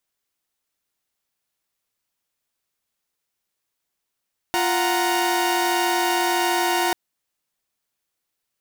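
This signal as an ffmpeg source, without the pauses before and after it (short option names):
-f lavfi -i "aevalsrc='0.0891*((2*mod(349.23*t,1)-1)+(2*mod(739.99*t,1)-1)+(2*mod(932.33*t,1)-1))':d=2.39:s=44100"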